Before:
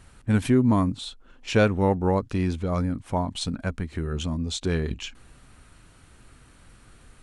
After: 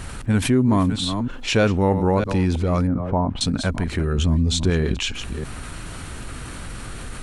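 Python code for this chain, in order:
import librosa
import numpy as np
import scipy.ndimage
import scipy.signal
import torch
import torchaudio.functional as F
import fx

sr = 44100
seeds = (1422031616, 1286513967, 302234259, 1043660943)

y = fx.reverse_delay(x, sr, ms=320, wet_db=-13.5)
y = fx.lowpass(y, sr, hz=1200.0, slope=12, at=(2.87, 3.41))
y = fx.low_shelf(y, sr, hz=150.0, db=11.5, at=(4.18, 4.7))
y = fx.env_flatten(y, sr, amount_pct=50)
y = y * 10.0 ** (1.0 / 20.0)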